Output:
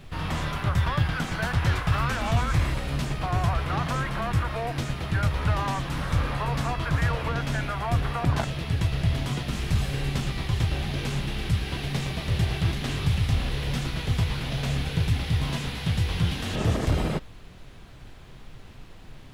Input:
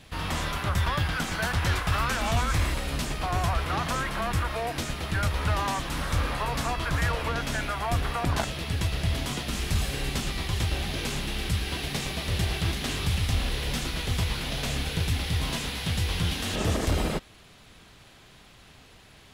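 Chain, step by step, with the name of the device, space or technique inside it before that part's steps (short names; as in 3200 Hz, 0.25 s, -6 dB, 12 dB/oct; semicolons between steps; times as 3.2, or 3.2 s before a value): car interior (bell 130 Hz +9 dB 0.59 oct; high shelf 4700 Hz -8 dB; brown noise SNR 18 dB)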